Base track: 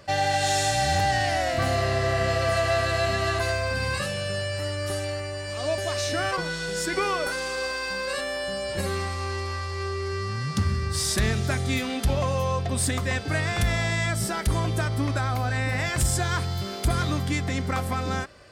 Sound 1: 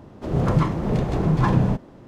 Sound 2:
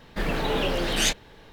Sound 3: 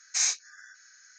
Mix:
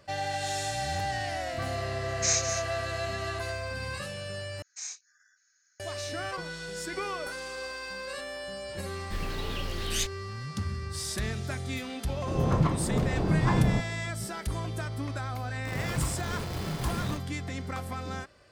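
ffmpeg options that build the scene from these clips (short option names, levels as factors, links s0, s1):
-filter_complex "[3:a]asplit=2[s0][s1];[1:a]asplit=2[s2][s3];[0:a]volume=0.376[s4];[s0]aecho=1:1:203:0.376[s5];[s1]equalizer=f=9000:w=1.4:g=6.5[s6];[2:a]equalizer=f=720:w=0.34:g=-12[s7];[s3]acrusher=bits=3:mix=0:aa=0.000001[s8];[s4]asplit=2[s9][s10];[s9]atrim=end=4.624[s11];[s6]atrim=end=1.18,asetpts=PTS-STARTPTS,volume=0.158[s12];[s10]atrim=start=5.796[s13];[s5]atrim=end=1.18,asetpts=PTS-STARTPTS,volume=0.891,afade=t=in:d=0.004:c=hsin,afade=t=out:st=1.176:d=0.004:c=hsin,adelay=2080[s14];[s7]atrim=end=1.52,asetpts=PTS-STARTPTS,volume=0.631,afade=t=in:d=0.004:c=hsin,afade=t=out:st=1.516:d=0.004:c=hsin,adelay=8940[s15];[s2]atrim=end=2.07,asetpts=PTS-STARTPTS,volume=0.531,afade=t=in:d=0.004:c=hsin,afade=t=out:st=2.066:d=0.004:c=hsin,adelay=12040[s16];[s8]atrim=end=2.07,asetpts=PTS-STARTPTS,volume=0.178,afade=t=in:d=0.004:c=hsin,afade=t=out:st=2.066:d=0.004:c=hsin,adelay=15410[s17];[s11][s12]acrossfade=d=0.004:c1=hsin:c2=hsin[s18];[s18][s13]acrossfade=d=0.004:c1=hsin:c2=hsin[s19];[s19][s14][s15][s16][s17]amix=inputs=5:normalize=0"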